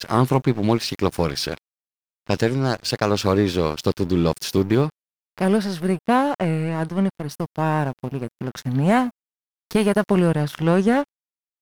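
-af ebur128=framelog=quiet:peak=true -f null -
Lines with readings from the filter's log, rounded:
Integrated loudness:
  I:         -21.7 LUFS
  Threshold: -31.9 LUFS
Loudness range:
  LRA:         2.3 LU
  Threshold: -42.4 LUFS
  LRA low:   -23.7 LUFS
  LRA high:  -21.4 LUFS
True peak:
  Peak:       -4.8 dBFS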